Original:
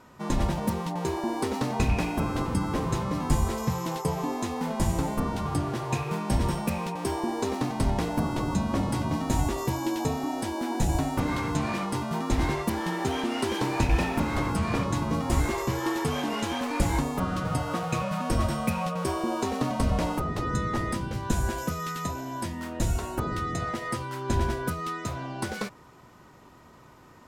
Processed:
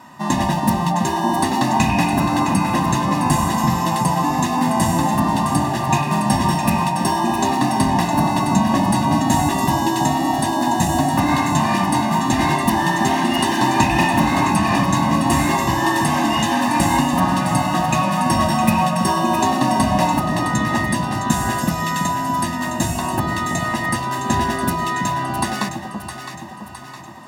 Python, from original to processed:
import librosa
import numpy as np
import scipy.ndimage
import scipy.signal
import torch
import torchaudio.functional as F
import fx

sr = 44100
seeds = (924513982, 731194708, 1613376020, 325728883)

y = scipy.signal.sosfilt(scipy.signal.butter(2, 180.0, 'highpass', fs=sr, output='sos'), x)
y = y + 0.98 * np.pad(y, (int(1.1 * sr / 1000.0), 0))[:len(y)]
y = fx.echo_alternate(y, sr, ms=331, hz=860.0, feedback_pct=71, wet_db=-5.5)
y = y * librosa.db_to_amplitude(8.5)